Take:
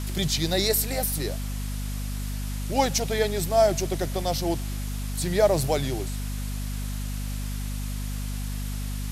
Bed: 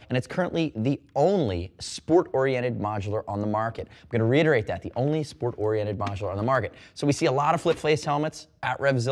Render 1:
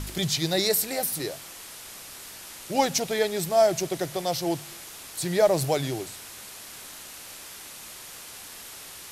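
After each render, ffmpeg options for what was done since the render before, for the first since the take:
ffmpeg -i in.wav -af "bandreject=frequency=50:width_type=h:width=4,bandreject=frequency=100:width_type=h:width=4,bandreject=frequency=150:width_type=h:width=4,bandreject=frequency=200:width_type=h:width=4,bandreject=frequency=250:width_type=h:width=4" out.wav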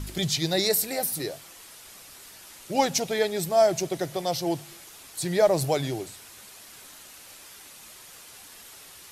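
ffmpeg -i in.wav -af "afftdn=noise_reduction=6:noise_floor=-43" out.wav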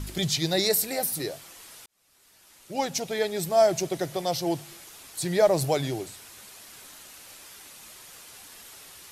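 ffmpeg -i in.wav -filter_complex "[0:a]asplit=2[link_01][link_02];[link_01]atrim=end=1.86,asetpts=PTS-STARTPTS,afade=type=out:start_time=1.856:duration=0.004:curve=hsin[link_03];[link_02]atrim=start=1.86,asetpts=PTS-STARTPTS,afade=type=in:duration=1.73[link_04];[link_03][link_04]concat=n=2:v=0:a=1" out.wav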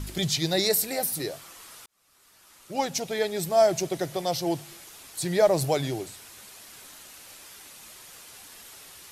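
ffmpeg -i in.wav -filter_complex "[0:a]asettb=1/sr,asplit=3[link_01][link_02][link_03];[link_01]atrim=end=1.334[link_04];[link_02]atrim=start=1.33:end=2.82,asetpts=PTS-STARTPTS,afade=type=in:duration=0.004:curve=qsin,afade=type=out:start_time=1.486:duration=0.004:curve=qsin,equalizer=frequency=1200:width=2.8:gain=6[link_05];[link_03]atrim=start=2.816[link_06];[link_04][link_05]acrossfade=duration=0.004:curve1=hsin:curve2=qsin[link_07];[link_07][link_06]acrossfade=duration=0.004:curve1=qsin:curve2=hsin" out.wav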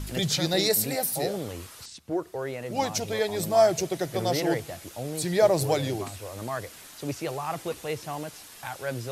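ffmpeg -i in.wav -i bed.wav -filter_complex "[1:a]volume=-9.5dB[link_01];[0:a][link_01]amix=inputs=2:normalize=0" out.wav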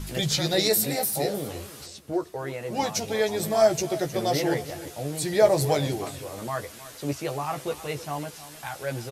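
ffmpeg -i in.wav -filter_complex "[0:a]asplit=2[link_01][link_02];[link_02]adelay=14,volume=-5.5dB[link_03];[link_01][link_03]amix=inputs=2:normalize=0,aecho=1:1:313|626|939:0.158|0.0412|0.0107" out.wav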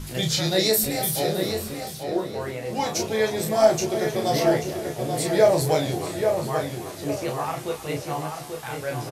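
ffmpeg -i in.wav -filter_complex "[0:a]asplit=2[link_01][link_02];[link_02]adelay=32,volume=-4.5dB[link_03];[link_01][link_03]amix=inputs=2:normalize=0,asplit=2[link_04][link_05];[link_05]adelay=837,lowpass=frequency=3200:poles=1,volume=-5.5dB,asplit=2[link_06][link_07];[link_07]adelay=837,lowpass=frequency=3200:poles=1,volume=0.35,asplit=2[link_08][link_09];[link_09]adelay=837,lowpass=frequency=3200:poles=1,volume=0.35,asplit=2[link_10][link_11];[link_11]adelay=837,lowpass=frequency=3200:poles=1,volume=0.35[link_12];[link_06][link_08][link_10][link_12]amix=inputs=4:normalize=0[link_13];[link_04][link_13]amix=inputs=2:normalize=0" out.wav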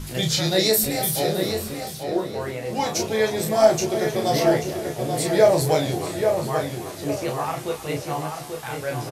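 ffmpeg -i in.wav -af "volume=1.5dB" out.wav

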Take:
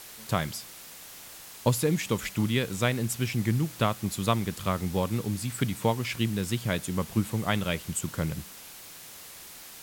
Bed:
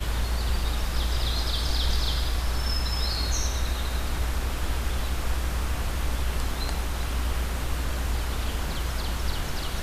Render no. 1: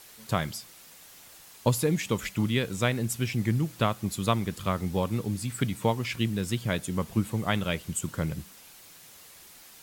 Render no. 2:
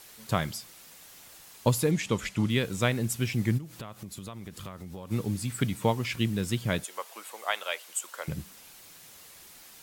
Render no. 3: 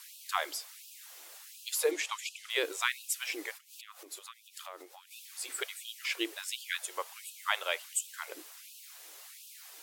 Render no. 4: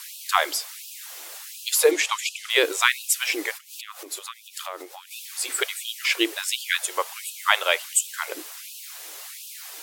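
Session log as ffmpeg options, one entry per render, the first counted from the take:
ffmpeg -i in.wav -af "afftdn=noise_reduction=6:noise_floor=-46" out.wav
ffmpeg -i in.wav -filter_complex "[0:a]asettb=1/sr,asplit=3[link_01][link_02][link_03];[link_01]atrim=end=1.914[link_04];[link_02]atrim=start=1.91:end=2.5,asetpts=PTS-STARTPTS,afade=type=in:duration=0.004:curve=qsin,afade=type=out:start_time=0.586:duration=0.004:curve=qsin,lowpass=9200[link_05];[link_03]atrim=start=2.496[link_06];[link_04][link_05]acrossfade=duration=0.004:curve1=hsin:curve2=qsin[link_07];[link_07][link_06]acrossfade=duration=0.004:curve1=qsin:curve2=hsin,asplit=3[link_08][link_09][link_10];[link_08]afade=type=out:start_time=3.57:duration=0.02[link_11];[link_09]acompressor=threshold=-37dB:ratio=8:attack=3.2:release=140:knee=1:detection=peak,afade=type=in:start_time=3.57:duration=0.02,afade=type=out:start_time=5.1:duration=0.02[link_12];[link_10]afade=type=in:start_time=5.1:duration=0.02[link_13];[link_11][link_12][link_13]amix=inputs=3:normalize=0,asettb=1/sr,asplit=3[link_14][link_15][link_16];[link_14]atrim=end=6.844[link_17];[link_15]atrim=start=6.84:end=8.28,asetpts=PTS-STARTPTS,afade=type=in:duration=0.004:curve=qsin,afade=type=out:start_time=1.436:duration=0.004:curve=qsin,highpass=frequency=580:width=0.5412,highpass=frequency=580:width=1.3066[link_18];[link_16]atrim=start=8.276[link_19];[link_17][link_18]acrossfade=duration=0.004:curve1=hsin:curve2=qsin[link_20];[link_20][link_19]acrossfade=duration=0.004:curve1=qsin:curve2=hsin" out.wav
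ffmpeg -i in.wav -af "afftfilt=real='re*gte(b*sr/1024,280*pow(2500/280,0.5+0.5*sin(2*PI*1.4*pts/sr)))':imag='im*gte(b*sr/1024,280*pow(2500/280,0.5+0.5*sin(2*PI*1.4*pts/sr)))':win_size=1024:overlap=0.75" out.wav
ffmpeg -i in.wav -af "volume=11.5dB" out.wav

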